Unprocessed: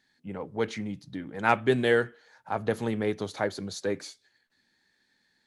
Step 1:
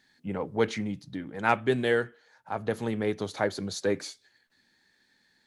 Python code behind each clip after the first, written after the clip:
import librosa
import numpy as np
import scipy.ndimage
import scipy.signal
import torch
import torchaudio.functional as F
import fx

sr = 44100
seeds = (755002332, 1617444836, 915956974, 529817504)

y = fx.rider(x, sr, range_db=5, speed_s=2.0)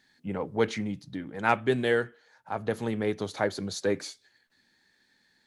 y = x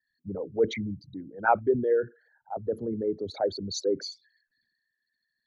y = fx.envelope_sharpen(x, sr, power=3.0)
y = fx.band_widen(y, sr, depth_pct=40)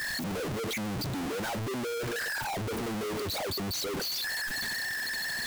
y = np.sign(x) * np.sqrt(np.mean(np.square(x)))
y = F.gain(torch.from_numpy(y), -2.5).numpy()